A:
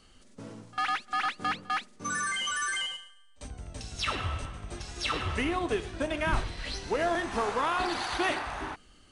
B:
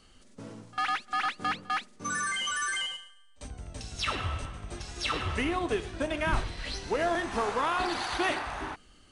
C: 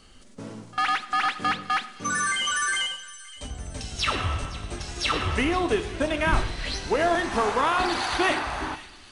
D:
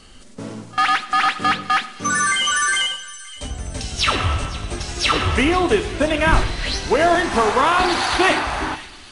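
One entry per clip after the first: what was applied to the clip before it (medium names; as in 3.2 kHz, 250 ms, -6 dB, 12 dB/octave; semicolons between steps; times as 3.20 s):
no audible change
feedback echo behind a high-pass 517 ms, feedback 55%, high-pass 2.7 kHz, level -15 dB; two-slope reverb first 0.83 s, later 2.9 s, from -19 dB, DRR 12.5 dB; trim +5.5 dB
trim +7 dB; Vorbis 48 kbps 32 kHz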